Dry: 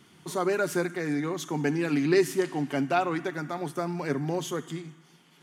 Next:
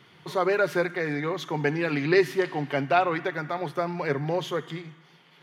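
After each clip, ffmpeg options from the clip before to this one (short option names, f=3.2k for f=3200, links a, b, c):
-af "equalizer=f=125:t=o:w=1:g=8,equalizer=f=250:t=o:w=1:g=-4,equalizer=f=500:t=o:w=1:g=9,equalizer=f=1k:t=o:w=1:g=5,equalizer=f=2k:t=o:w=1:g=8,equalizer=f=4k:t=o:w=1:g=8,equalizer=f=8k:t=o:w=1:g=-10,volume=-4dB"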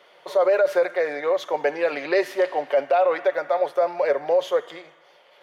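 -af "highpass=f=570:t=q:w=7.1,alimiter=limit=-11.5dB:level=0:latency=1:release=27"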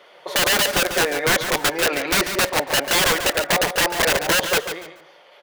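-af "aeval=exprs='(mod(7.5*val(0)+1,2)-1)/7.5':c=same,aecho=1:1:142|284|426:0.335|0.077|0.0177,volume=4.5dB"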